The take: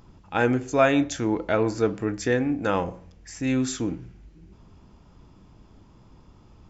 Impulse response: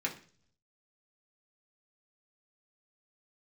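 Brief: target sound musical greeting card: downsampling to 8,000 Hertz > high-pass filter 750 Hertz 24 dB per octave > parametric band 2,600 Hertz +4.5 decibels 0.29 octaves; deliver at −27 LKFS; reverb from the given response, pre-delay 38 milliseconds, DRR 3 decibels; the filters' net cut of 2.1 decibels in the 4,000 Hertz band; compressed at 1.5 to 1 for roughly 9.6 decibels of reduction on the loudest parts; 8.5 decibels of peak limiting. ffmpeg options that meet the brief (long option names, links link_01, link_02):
-filter_complex "[0:a]equalizer=frequency=4000:width_type=o:gain=-3.5,acompressor=threshold=-41dB:ratio=1.5,alimiter=limit=-24dB:level=0:latency=1,asplit=2[link_01][link_02];[1:a]atrim=start_sample=2205,adelay=38[link_03];[link_02][link_03]afir=irnorm=-1:irlink=0,volume=-7.5dB[link_04];[link_01][link_04]amix=inputs=2:normalize=0,aresample=8000,aresample=44100,highpass=frequency=750:width=0.5412,highpass=frequency=750:width=1.3066,equalizer=frequency=2600:width_type=o:width=0.29:gain=4.5,volume=14.5dB"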